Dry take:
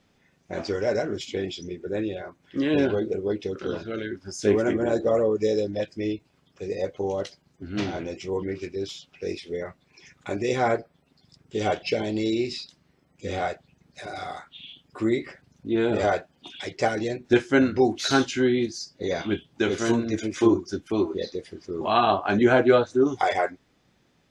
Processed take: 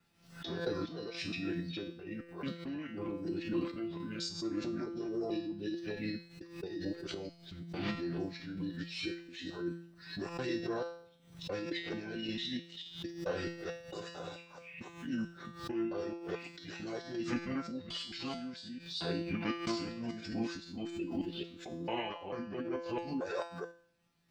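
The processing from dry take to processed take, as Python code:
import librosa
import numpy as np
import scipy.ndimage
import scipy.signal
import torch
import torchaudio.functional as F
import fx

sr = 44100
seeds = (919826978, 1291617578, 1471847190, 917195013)

y = fx.local_reverse(x, sr, ms=221.0)
y = fx.high_shelf(y, sr, hz=5900.0, db=12.0)
y = fx.formant_shift(y, sr, semitones=-5)
y = fx.rider(y, sr, range_db=4, speed_s=0.5)
y = fx.comb_fb(y, sr, f0_hz=170.0, decay_s=0.58, harmonics='all', damping=0.0, mix_pct=90)
y = fx.tremolo_random(y, sr, seeds[0], hz=3.5, depth_pct=55)
y = fx.pre_swell(y, sr, db_per_s=100.0)
y = y * librosa.db_to_amplitude(4.0)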